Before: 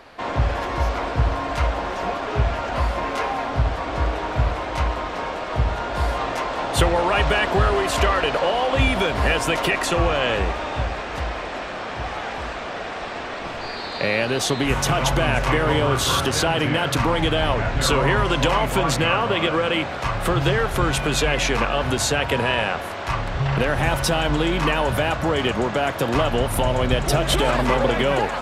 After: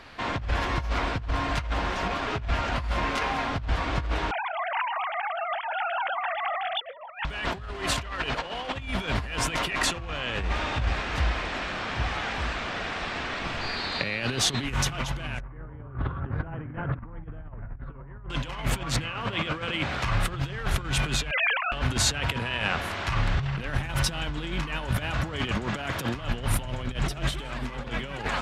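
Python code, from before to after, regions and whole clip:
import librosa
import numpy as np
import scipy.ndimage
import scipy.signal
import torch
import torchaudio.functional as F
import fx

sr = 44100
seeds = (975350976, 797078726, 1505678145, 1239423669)

y = fx.chain(x, sr, fx.sine_speech(),
    fx.highpass(hz=250.0, slope=24),
    fx.echo_single(ms=155, db=-15.5), at=(4.31, 7.25))
y = fx.chain(y, sr, fx.lowpass(hz=1700.0, slope=24),
    fx.tilt_eq(slope=-2.0), at=(15.4, 18.3))
y = fx.chain(y, sr, fx.sine_speech(),
    fx.cheby2_highpass(hz=330.0, order=4, stop_db=40), at=(21.31, 21.72))
y = fx.high_shelf(y, sr, hz=7700.0, db=-10.0)
y = fx.over_compress(y, sr, threshold_db=-24.0, ratio=-0.5)
y = fx.peak_eq(y, sr, hz=570.0, db=-10.5, octaves=2.2)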